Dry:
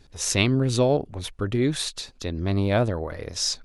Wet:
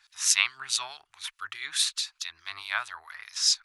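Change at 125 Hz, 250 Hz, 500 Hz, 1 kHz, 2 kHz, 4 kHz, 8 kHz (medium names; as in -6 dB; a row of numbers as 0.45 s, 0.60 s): under -40 dB, under -40 dB, -31.0 dB, -5.5 dB, +2.0 dB, +2.5 dB, +3.0 dB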